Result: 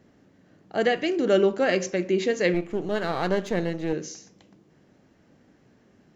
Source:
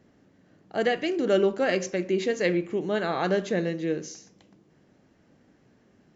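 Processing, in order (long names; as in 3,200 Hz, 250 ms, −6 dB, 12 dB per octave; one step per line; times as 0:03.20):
0:02.54–0:03.93: gain on one half-wave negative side −7 dB
level +2 dB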